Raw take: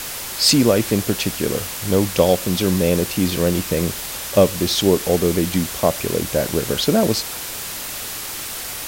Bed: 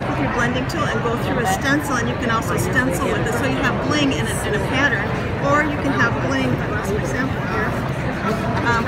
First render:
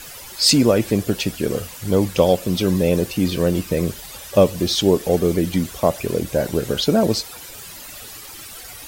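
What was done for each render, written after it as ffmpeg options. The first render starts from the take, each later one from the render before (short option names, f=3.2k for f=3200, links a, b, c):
-af "afftdn=nr=12:nf=-30"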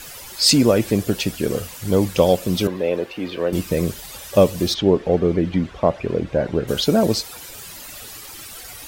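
-filter_complex "[0:a]asettb=1/sr,asplit=3[a][b][c];[a]atrim=end=2.674[d];[b]atrim=start=2.67:end=3.53,asetpts=PTS-STARTPTS,afade=t=in:d=0.004:c=qsin,afade=t=out:st=0.856:d=0.004:c=qsin,acrossover=split=320 3400:gain=0.141 1 0.0891[e][f][g];[e][f][g]amix=inputs=3:normalize=0[h];[c]atrim=start=3.526[i];[d][h]acrossfade=d=0.004:c1=hsin:c2=qsin[j];[j][i]acrossfade=d=0.004:c1=qsin:c2=hsin,asplit=3[k][l][m];[k]afade=t=out:st=4.73:d=0.02[n];[l]lowpass=2.5k,afade=t=in:st=4.73:d=0.02,afade=t=out:st=6.67:d=0.02[o];[m]afade=t=in:st=6.67:d=0.02[p];[n][o][p]amix=inputs=3:normalize=0"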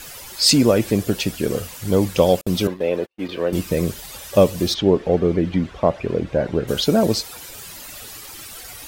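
-filter_complex "[0:a]asettb=1/sr,asplit=3[a][b][c];[a]atrim=end=2.414[d];[b]atrim=start=2.41:end=3.29,asetpts=PTS-STARTPTS,afade=t=in:d=0.004:c=qsin,afade=t=out:st=0.876:d=0.004:c=qsin,agate=range=-47dB:threshold=-28dB:ratio=16:release=100:detection=peak[e];[c]atrim=start=3.286[f];[d][e]acrossfade=d=0.004:c1=hsin:c2=qsin[g];[g][f]acrossfade=d=0.004:c1=qsin:c2=hsin"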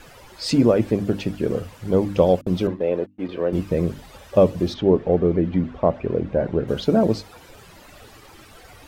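-af "lowpass=f=1.1k:p=1,bandreject=f=50:t=h:w=6,bandreject=f=100:t=h:w=6,bandreject=f=150:t=h:w=6,bandreject=f=200:t=h:w=6,bandreject=f=250:t=h:w=6,bandreject=f=300:t=h:w=6"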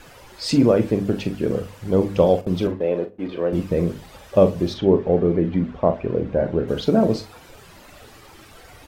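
-filter_complex "[0:a]asplit=2[a][b];[b]adelay=41,volume=-10dB[c];[a][c]amix=inputs=2:normalize=0,asplit=2[d][e];[e]adelay=62,lowpass=f=2.8k:p=1,volume=-19dB,asplit=2[f][g];[g]adelay=62,lowpass=f=2.8k:p=1,volume=0.37,asplit=2[h][i];[i]adelay=62,lowpass=f=2.8k:p=1,volume=0.37[j];[d][f][h][j]amix=inputs=4:normalize=0"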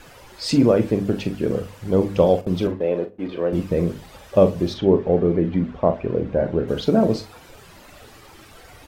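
-af anull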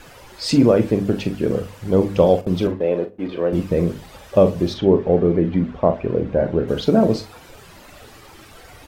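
-af "volume=2dB,alimiter=limit=-3dB:level=0:latency=1"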